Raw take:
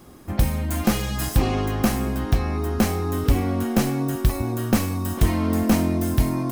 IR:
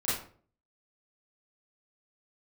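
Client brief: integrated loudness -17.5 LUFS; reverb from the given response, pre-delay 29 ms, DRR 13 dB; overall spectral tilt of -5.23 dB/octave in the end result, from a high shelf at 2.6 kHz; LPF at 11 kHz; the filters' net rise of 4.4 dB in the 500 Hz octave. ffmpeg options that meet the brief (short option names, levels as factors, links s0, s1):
-filter_complex "[0:a]lowpass=11000,equalizer=f=500:t=o:g=5.5,highshelf=f=2600:g=8,asplit=2[s0][s1];[1:a]atrim=start_sample=2205,adelay=29[s2];[s1][s2]afir=irnorm=-1:irlink=0,volume=0.0891[s3];[s0][s3]amix=inputs=2:normalize=0,volume=1.5"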